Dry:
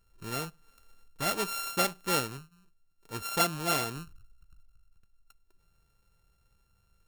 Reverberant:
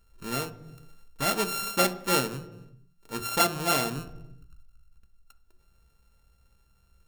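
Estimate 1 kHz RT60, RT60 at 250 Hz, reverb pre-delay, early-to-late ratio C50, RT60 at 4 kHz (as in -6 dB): 0.95 s, 1.4 s, 3 ms, 15.5 dB, 0.85 s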